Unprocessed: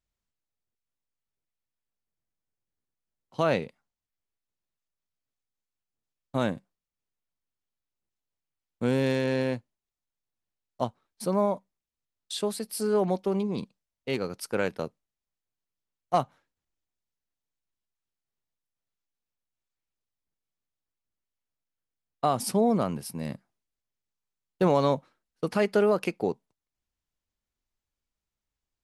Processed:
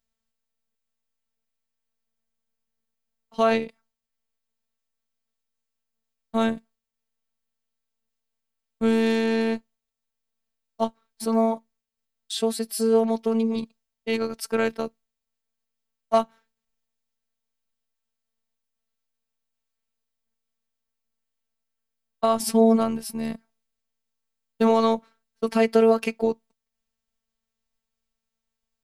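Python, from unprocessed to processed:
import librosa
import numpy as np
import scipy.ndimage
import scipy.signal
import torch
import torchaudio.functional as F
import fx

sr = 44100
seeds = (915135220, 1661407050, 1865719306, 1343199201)

y = fx.robotise(x, sr, hz=225.0)
y = F.gain(torch.from_numpy(y), 6.5).numpy()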